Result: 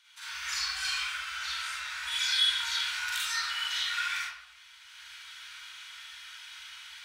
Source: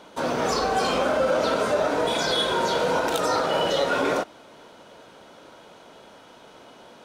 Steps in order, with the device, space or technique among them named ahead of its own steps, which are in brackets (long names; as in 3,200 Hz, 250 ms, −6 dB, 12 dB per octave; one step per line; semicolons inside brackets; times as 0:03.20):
far laptop microphone (convolution reverb RT60 0.80 s, pre-delay 40 ms, DRR −7 dB; high-pass filter 100 Hz 12 dB per octave; automatic gain control gain up to 11.5 dB)
inverse Chebyshev band-stop filter 190–470 Hz, stop band 80 dB
level −8.5 dB